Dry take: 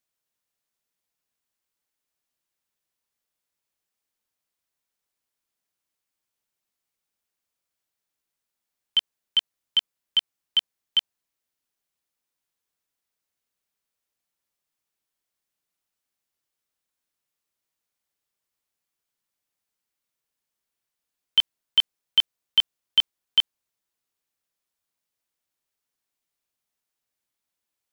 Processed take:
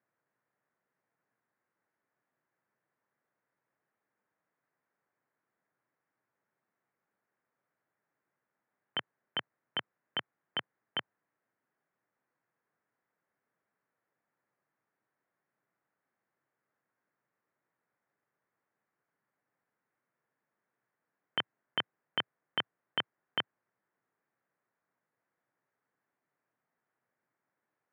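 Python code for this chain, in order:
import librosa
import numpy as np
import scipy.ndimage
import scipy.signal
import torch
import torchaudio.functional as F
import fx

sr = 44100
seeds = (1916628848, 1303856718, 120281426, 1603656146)

y = scipy.signal.sosfilt(scipy.signal.ellip(3, 1.0, 40, [120.0, 1800.0], 'bandpass', fs=sr, output='sos'), x)
y = y * librosa.db_to_amplitude(8.5)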